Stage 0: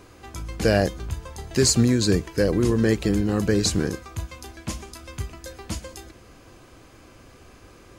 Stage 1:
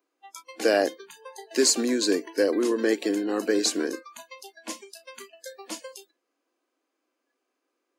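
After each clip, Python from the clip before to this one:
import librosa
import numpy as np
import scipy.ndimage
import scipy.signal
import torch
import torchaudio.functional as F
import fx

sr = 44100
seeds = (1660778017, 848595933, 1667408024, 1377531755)

y = scipy.signal.sosfilt(scipy.signal.ellip(4, 1.0, 60, 270.0, 'highpass', fs=sr, output='sos'), x)
y = fx.noise_reduce_blind(y, sr, reduce_db=28)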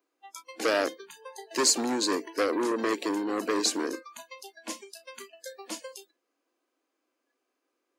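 y = fx.transformer_sat(x, sr, knee_hz=1600.0)
y = y * librosa.db_to_amplitude(-1.0)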